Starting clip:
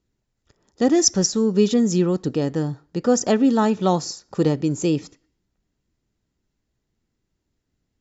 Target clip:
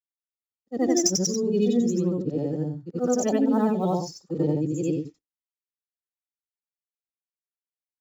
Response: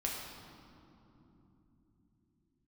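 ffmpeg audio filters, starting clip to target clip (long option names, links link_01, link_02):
-filter_complex "[0:a]afftfilt=real='re':imag='-im':win_size=8192:overlap=0.75,agate=range=-33dB:threshold=-39dB:ratio=3:detection=peak,afftdn=noise_reduction=14:noise_floor=-33,adynamicequalizer=threshold=0.00501:dfrequency=1200:dqfactor=2.4:tfrequency=1200:tqfactor=2.4:attack=5:release=100:ratio=0.375:range=3.5:mode=cutabove:tftype=bell,acrossover=split=380|960[link_01][link_02][link_03];[link_03]acrusher=bits=5:mode=log:mix=0:aa=0.000001[link_04];[link_01][link_02][link_04]amix=inputs=3:normalize=0"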